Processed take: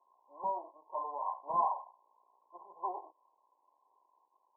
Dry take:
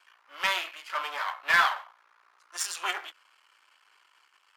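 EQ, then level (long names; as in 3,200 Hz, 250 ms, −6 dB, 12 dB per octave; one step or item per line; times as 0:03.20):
high-pass filter 220 Hz 6 dB per octave
linear-phase brick-wall low-pass 1,100 Hz
0.0 dB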